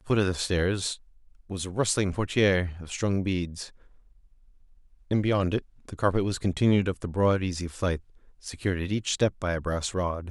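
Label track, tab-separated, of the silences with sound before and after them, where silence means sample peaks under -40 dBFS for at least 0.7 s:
3.690000	5.110000	silence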